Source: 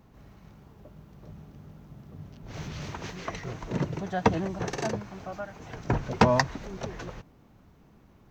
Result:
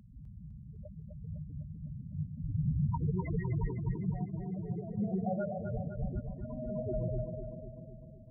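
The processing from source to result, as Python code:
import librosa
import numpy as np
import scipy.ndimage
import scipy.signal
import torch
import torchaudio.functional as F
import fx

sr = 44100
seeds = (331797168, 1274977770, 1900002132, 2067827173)

p1 = fx.rev_spring(x, sr, rt60_s=3.2, pass_ms=(48,), chirp_ms=80, drr_db=8.5)
p2 = fx.quant_dither(p1, sr, seeds[0], bits=6, dither='none')
p3 = p1 + F.gain(torch.from_numpy(p2), -5.0).numpy()
p4 = fx.over_compress(p3, sr, threshold_db=-32.0, ratio=-0.5)
p5 = scipy.signal.sosfilt(scipy.signal.butter(2, 3900.0, 'lowpass', fs=sr, output='sos'), p4)
p6 = fx.spec_topn(p5, sr, count=4)
y = p6 + fx.echo_feedback(p6, sr, ms=253, feedback_pct=58, wet_db=-6, dry=0)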